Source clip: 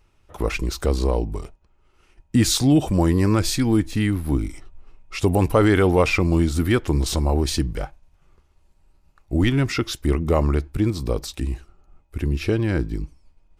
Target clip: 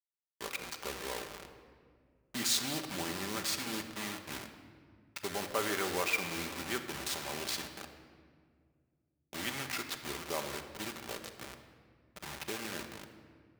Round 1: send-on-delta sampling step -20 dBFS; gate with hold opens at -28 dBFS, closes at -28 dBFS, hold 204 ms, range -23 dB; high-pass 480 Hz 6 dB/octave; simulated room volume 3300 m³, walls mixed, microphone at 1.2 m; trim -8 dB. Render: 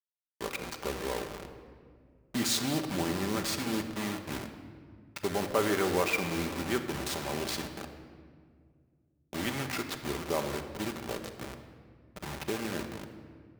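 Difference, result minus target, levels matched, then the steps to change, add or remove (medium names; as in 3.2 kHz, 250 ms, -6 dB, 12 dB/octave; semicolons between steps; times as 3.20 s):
500 Hz band +4.0 dB
change: high-pass 1.5 kHz 6 dB/octave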